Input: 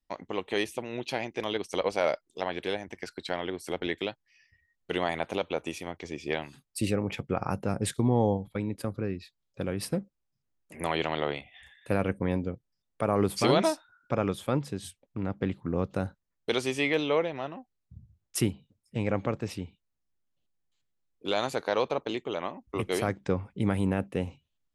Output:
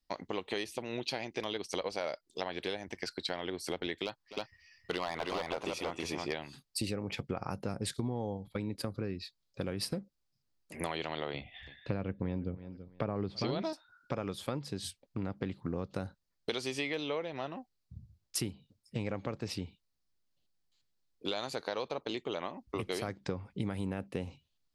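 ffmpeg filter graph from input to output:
-filter_complex "[0:a]asettb=1/sr,asplit=3[s0][s1][s2];[s0]atrim=end=4.054[s3];[s1]atrim=start=4.05:end=6.33,asetpts=PTS-STARTPTS,afade=t=in:d=0.004:c=qsin,afade=t=out:st=2.276:d=0.004:c=qsin,equalizer=f=1100:t=o:w=0.95:g=8.5,volume=9.44,asoftclip=hard,volume=0.106,aecho=1:1:259|318:0.126|0.708,atrim=end_sample=100548[s4];[s2]atrim=start=6.326[s5];[s3][s4]acrossfade=d=0.004:c1=hsin:c2=qsin[s6];[s6][s5]acrossfade=d=0.004:c1=qsin:c2=hsin,asettb=1/sr,asplit=3[s7][s8][s9];[s7]atrim=end=11.344[s10];[s8]atrim=start=11.34:end=13.73,asetpts=PTS-STARTPTS,afade=t=in:d=0.004:c=qsin,afade=t=out:st=2.386:d=0.004:c=qsin,lowpass=f=4800:w=0.5412,lowpass=f=4800:w=1.3066,lowshelf=f=380:g=9,aecho=1:1:331|662:0.075|0.012,atrim=end_sample=105399[s11];[s9]atrim=start=13.726[s12];[s10][s11]acrossfade=d=0.004:c1=hsin:c2=qsin[s13];[s13][s12]acrossfade=d=0.004:c1=qsin:c2=hsin,equalizer=f=4600:w=2.2:g=9,acompressor=threshold=0.0251:ratio=6"

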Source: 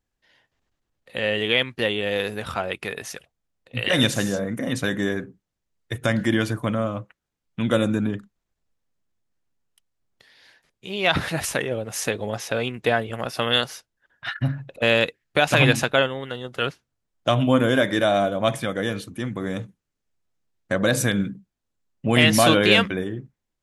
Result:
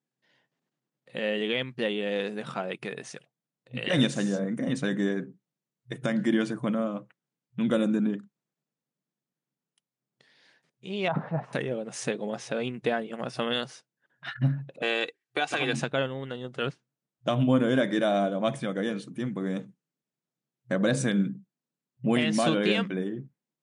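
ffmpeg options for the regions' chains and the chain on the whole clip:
-filter_complex "[0:a]asettb=1/sr,asplit=3[s0][s1][s2];[s0]atrim=end=11.084[s3];[s1]atrim=start=11.08:end=11.53,asetpts=PTS-STARTPTS,afade=t=in:d=0.004:c=qsin,afade=t=out:st=0.446:d=0.004:c=qsin,lowpass=f=930:t=q:w=1.6,equalizer=f=330:t=o:w=0.44:g=-9.5[s4];[s2]atrim=start=11.526[s5];[s3][s4]acrossfade=d=0.004:c1=hsin:c2=qsin[s6];[s6][s5]acrossfade=d=0.004:c1=qsin:c2=hsin,asettb=1/sr,asplit=3[s7][s8][s9];[s7]atrim=end=14.824[s10];[s8]atrim=start=14.82:end=15.73,asetpts=PTS-STARTPTS,afade=t=in:d=0.004:c=qsin,afade=t=out:st=0.906:d=0.004:c=qsin,highpass=230,lowshelf=f=450:g=-7,aecho=1:1:2.6:0.54,atrim=end_sample=40131[s11];[s9]atrim=start=15.726[s12];[s10][s11]acrossfade=d=0.004:c1=hsin:c2=qsin[s13];[s13][s12]acrossfade=d=0.004:c1=qsin:c2=hsin,alimiter=limit=0.398:level=0:latency=1:release=330,lowshelf=f=410:g=9,afftfilt=real='re*between(b*sr/4096,120,10000)':imag='im*between(b*sr/4096,120,10000)':win_size=4096:overlap=0.75,volume=0.398"

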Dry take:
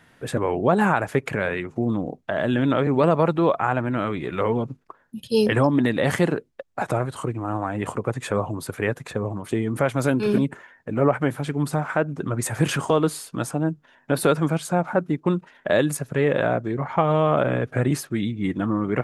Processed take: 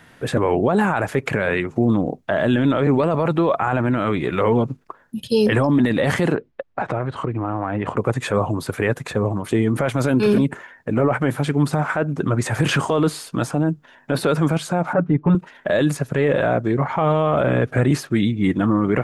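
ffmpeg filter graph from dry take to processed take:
-filter_complex "[0:a]asettb=1/sr,asplit=3[s0][s1][s2];[s0]atrim=end=6.354[s3];[s1]atrim=start=6.35:end=7.97,asetpts=PTS-STARTPTS,afade=t=in:d=0.004:c=qsin,afade=t=out:st=1.616:d=0.004:c=qsin,lowpass=2900,acompressor=threshold=0.0562:ratio=4:attack=3.2:release=140:knee=1:detection=peak[s4];[s2]atrim=start=7.966[s5];[s3][s4]acrossfade=d=0.004:c1=hsin:c2=qsin[s6];[s6][s5]acrossfade=d=0.004:c1=qsin:c2=hsin,asettb=1/sr,asplit=3[s7][s8][s9];[s7]atrim=end=14.934[s10];[s8]atrim=start=14.93:end=15.35,asetpts=PTS-STARTPTS,afade=t=in:d=0.004:c=qsin,afade=t=out:st=0.416:d=0.004:c=qsin,asubboost=boost=9:cutoff=240,lowpass=2000,aecho=1:1:6.9:0.87,atrim=end_sample=18522[s11];[s9]atrim=start=15.346[s12];[s10][s11]acrossfade=d=0.004:c1=hsin:c2=qsin[s13];[s13][s12]acrossfade=d=0.004:c1=qsin:c2=hsin,acrossover=split=5700[s14][s15];[s15]acompressor=threshold=0.00708:ratio=4:attack=1:release=60[s16];[s14][s16]amix=inputs=2:normalize=0,alimiter=limit=0.168:level=0:latency=1:release=10,volume=2.11"

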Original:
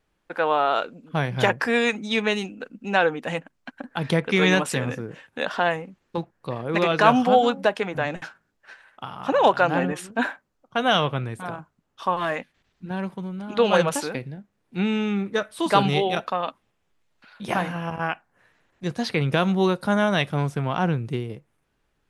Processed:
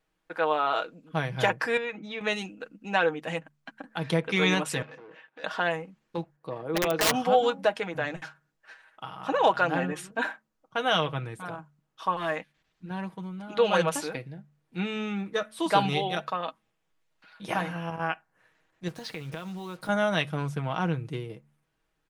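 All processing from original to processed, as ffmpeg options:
-filter_complex "[0:a]asettb=1/sr,asplit=3[s0][s1][s2];[s0]atrim=end=1.774[s3];[s1]atrim=start=1.77:end=2.21,asetpts=PTS-STARTPTS,afade=t=in:d=0.004:c=qsin,afade=t=out:st=0.436:d=0.004:c=qsin,lowpass=2800,acompressor=threshold=0.0398:ratio=2.5:attack=3.2:release=140:knee=1:detection=peak[s4];[s2]atrim=start=2.206[s5];[s3][s4]acrossfade=d=0.004:c1=hsin:c2=qsin[s6];[s6][s5]acrossfade=d=0.004:c1=qsin:c2=hsin,asettb=1/sr,asplit=3[s7][s8][s9];[s7]atrim=end=4.824[s10];[s8]atrim=start=4.82:end=5.44,asetpts=PTS-STARTPTS,afade=t=in:d=0.004:c=qsin,afade=t=out:st=0.616:d=0.004:c=qsin,acompressor=threshold=0.0316:ratio=3:attack=3.2:release=140:knee=1:detection=peak,volume=53.1,asoftclip=hard,volume=0.0188,highpass=360,lowpass=3100[s11];[s9]atrim=start=5.436[s12];[s10][s11]acrossfade=d=0.004:c1=hsin:c2=qsin[s13];[s13][s12]acrossfade=d=0.004:c1=qsin:c2=hsin,asettb=1/sr,asplit=3[s14][s15][s16];[s14]atrim=end=6.364[s17];[s15]atrim=start=6.36:end=7.14,asetpts=PTS-STARTPTS,afade=t=in:d=0.004:c=qsin,afade=t=out:st=0.776:d=0.004:c=qsin,highpass=f=440:p=1,tiltshelf=f=860:g=7,aeval=exprs='(mod(3.98*val(0)+1,2)-1)/3.98':c=same[s18];[s16]atrim=start=7.136[s19];[s17][s18]acrossfade=d=0.004:c1=hsin:c2=qsin[s20];[s20][s19]acrossfade=d=0.004:c1=qsin:c2=hsin,asettb=1/sr,asplit=3[s21][s22][s23];[s21]atrim=end=18.884[s24];[s22]atrim=start=18.88:end=19.89,asetpts=PTS-STARTPTS,afade=t=in:d=0.004:c=qsin,afade=t=out:st=1.006:d=0.004:c=qsin,acompressor=threshold=0.0398:ratio=10:attack=3.2:release=140:knee=1:detection=peak,acrusher=bits=7:mix=0:aa=0.5[s25];[s23]atrim=start=19.886[s26];[s24][s25]acrossfade=d=0.004:c1=hsin:c2=qsin[s27];[s27][s26]acrossfade=d=0.004:c1=qsin:c2=hsin,lowshelf=f=390:g=-3.5,aecho=1:1:6.3:0.47,bandreject=f=73.28:t=h:w=4,bandreject=f=146.56:t=h:w=4,bandreject=f=219.84:t=h:w=4,volume=0.596"

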